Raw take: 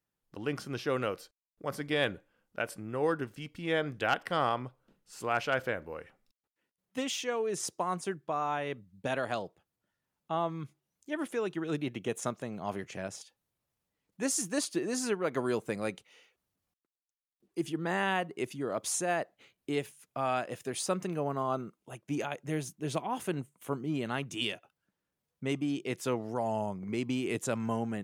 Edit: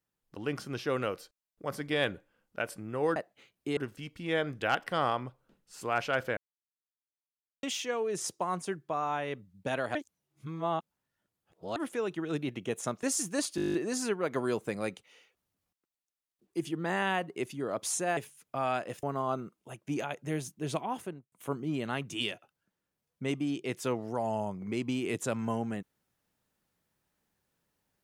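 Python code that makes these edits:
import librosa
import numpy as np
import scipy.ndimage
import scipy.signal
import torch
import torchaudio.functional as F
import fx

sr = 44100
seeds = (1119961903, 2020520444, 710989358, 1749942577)

y = fx.studio_fade_out(x, sr, start_s=23.07, length_s=0.46)
y = fx.edit(y, sr, fx.silence(start_s=5.76, length_s=1.26),
    fx.reverse_span(start_s=9.34, length_s=1.81),
    fx.cut(start_s=12.42, length_s=1.8),
    fx.stutter(start_s=14.75, slice_s=0.02, count=10),
    fx.move(start_s=19.18, length_s=0.61, to_s=3.16),
    fx.cut(start_s=20.65, length_s=0.59), tone=tone)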